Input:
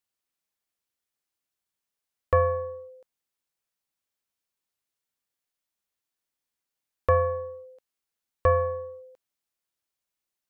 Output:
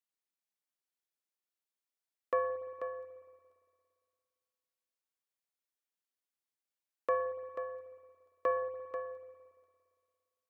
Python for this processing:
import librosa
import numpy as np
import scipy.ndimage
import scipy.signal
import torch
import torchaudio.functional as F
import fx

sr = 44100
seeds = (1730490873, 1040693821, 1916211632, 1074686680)

p1 = scipy.signal.sosfilt(scipy.signal.butter(4, 210.0, 'highpass', fs=sr, output='sos'), x)
p2 = p1 + fx.echo_single(p1, sr, ms=488, db=-8.5, dry=0)
p3 = fx.rev_spring(p2, sr, rt60_s=2.2, pass_ms=(57,), chirp_ms=20, drr_db=11.5)
y = F.gain(torch.from_numpy(p3), -9.0).numpy()